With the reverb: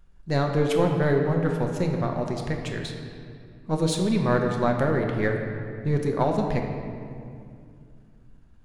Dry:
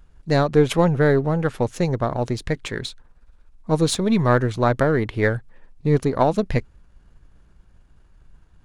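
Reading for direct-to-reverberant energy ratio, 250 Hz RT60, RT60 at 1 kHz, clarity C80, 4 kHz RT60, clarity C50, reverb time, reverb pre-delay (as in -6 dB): 2.0 dB, 3.2 s, 2.2 s, 5.5 dB, 1.5 s, 4.0 dB, 2.4 s, 5 ms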